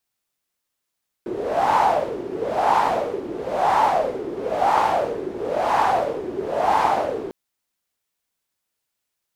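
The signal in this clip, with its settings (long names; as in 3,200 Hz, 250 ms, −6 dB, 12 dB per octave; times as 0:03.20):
wind from filtered noise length 6.05 s, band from 370 Hz, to 900 Hz, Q 6.1, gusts 6, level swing 12 dB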